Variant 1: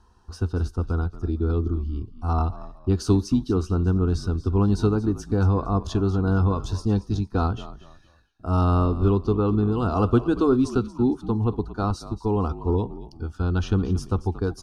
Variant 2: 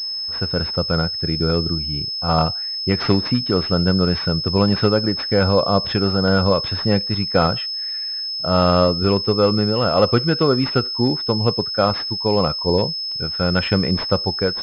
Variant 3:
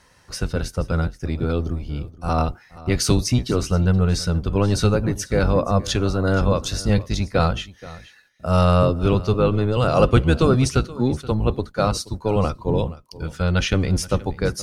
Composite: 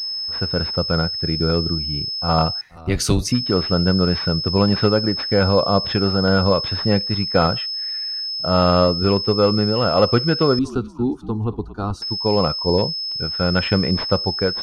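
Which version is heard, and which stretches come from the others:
2
0:02.61–0:03.32: punch in from 3
0:10.59–0:12.02: punch in from 1

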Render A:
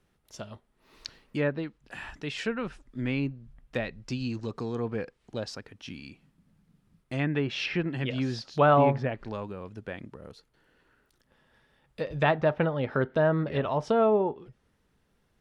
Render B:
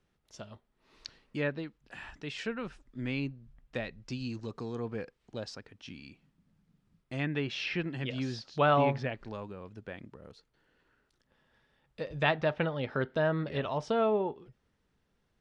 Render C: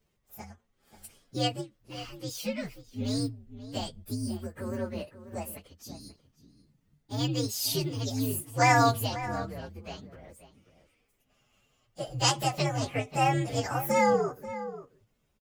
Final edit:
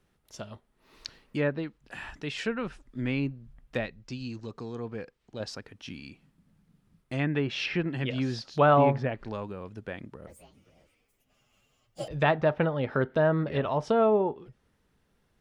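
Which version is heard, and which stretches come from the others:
A
0:03.86–0:05.40: punch in from B
0:10.27–0:12.08: punch in from C

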